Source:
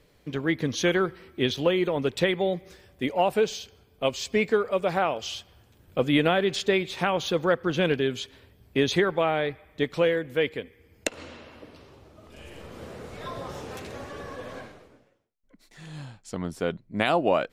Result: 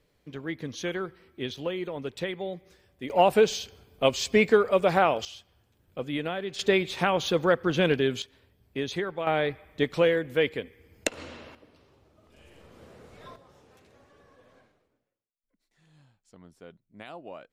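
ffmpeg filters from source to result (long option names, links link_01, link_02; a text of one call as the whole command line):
ffmpeg -i in.wav -af "asetnsamples=nb_out_samples=441:pad=0,asendcmd='3.1 volume volume 3dB;5.25 volume volume -9.5dB;6.59 volume volume 0.5dB;8.22 volume volume -8dB;9.27 volume volume 0.5dB;11.55 volume volume -10dB;13.36 volume volume -20dB',volume=-8.5dB" out.wav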